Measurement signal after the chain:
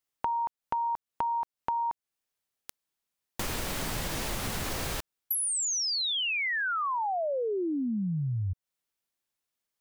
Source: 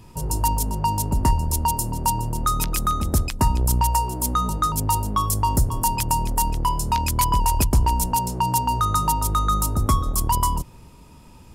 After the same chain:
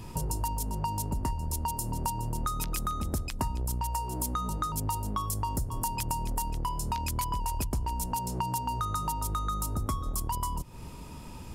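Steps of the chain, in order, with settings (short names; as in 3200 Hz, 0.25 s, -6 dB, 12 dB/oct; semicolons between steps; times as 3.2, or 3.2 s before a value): compressor 6:1, threshold -33 dBFS; gain +3.5 dB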